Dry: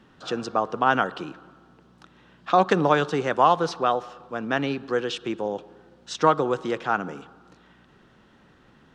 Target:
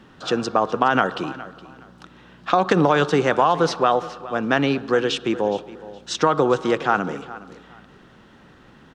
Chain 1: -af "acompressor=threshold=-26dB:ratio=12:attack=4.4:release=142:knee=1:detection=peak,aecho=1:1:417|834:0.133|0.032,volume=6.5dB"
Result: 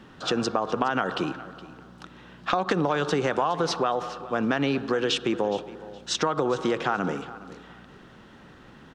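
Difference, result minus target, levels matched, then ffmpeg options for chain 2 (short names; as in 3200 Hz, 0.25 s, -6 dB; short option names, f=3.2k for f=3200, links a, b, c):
compressor: peak gain reduction +8 dB
-af "acompressor=threshold=-17.5dB:ratio=12:attack=4.4:release=142:knee=1:detection=peak,aecho=1:1:417|834:0.133|0.032,volume=6.5dB"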